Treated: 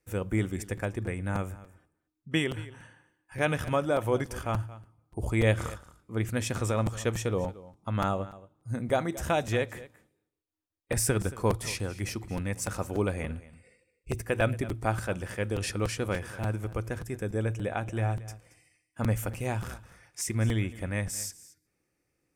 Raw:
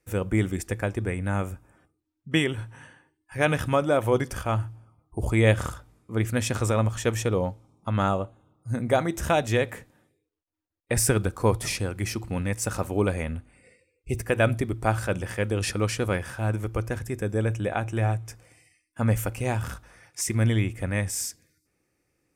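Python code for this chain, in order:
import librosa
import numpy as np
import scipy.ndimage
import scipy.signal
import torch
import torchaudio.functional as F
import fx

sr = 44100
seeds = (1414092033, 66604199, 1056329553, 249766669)

y = x + 10.0 ** (-18.0 / 20.0) * np.pad(x, (int(226 * sr / 1000.0), 0))[:len(x)]
y = fx.buffer_crackle(y, sr, first_s=0.77, period_s=0.29, block=256, kind='repeat')
y = y * 10.0 ** (-4.5 / 20.0)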